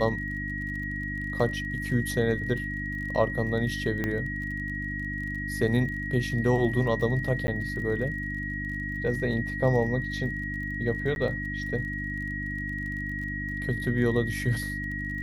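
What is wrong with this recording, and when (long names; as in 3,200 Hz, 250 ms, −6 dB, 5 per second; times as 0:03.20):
surface crackle 32 per second −37 dBFS
mains hum 50 Hz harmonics 6 −35 dBFS
whistle 1,900 Hz −33 dBFS
0:04.04: click −16 dBFS
0:07.47–0:07.48: drop-out 10 ms
0:11.15–0:11.16: drop-out 11 ms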